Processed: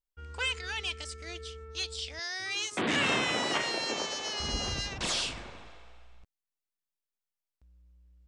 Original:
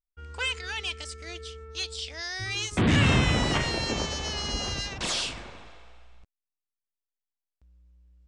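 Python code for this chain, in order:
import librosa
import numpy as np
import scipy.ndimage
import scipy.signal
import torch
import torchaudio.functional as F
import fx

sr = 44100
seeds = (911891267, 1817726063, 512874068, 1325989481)

y = fx.highpass(x, sr, hz=350.0, slope=12, at=(2.19, 4.4))
y = y * librosa.db_to_amplitude(-2.0)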